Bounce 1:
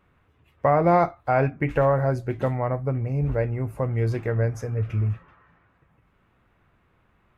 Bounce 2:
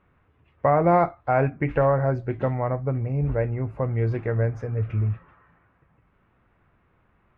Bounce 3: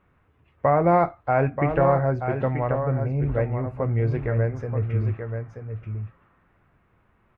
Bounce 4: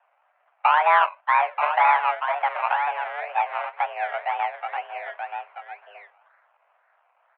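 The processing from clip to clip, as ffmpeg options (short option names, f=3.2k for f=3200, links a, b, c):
-af "lowpass=2.6k"
-af "aecho=1:1:932:0.422"
-filter_complex "[0:a]asplit=2[a][b];[b]asoftclip=type=hard:threshold=-20dB,volume=-4.5dB[c];[a][c]amix=inputs=2:normalize=0,acrusher=samples=23:mix=1:aa=0.000001:lfo=1:lforange=13.8:lforate=2,highpass=f=350:t=q:w=0.5412,highpass=f=350:t=q:w=1.307,lowpass=f=2.3k:t=q:w=0.5176,lowpass=f=2.3k:t=q:w=0.7071,lowpass=f=2.3k:t=q:w=1.932,afreqshift=300"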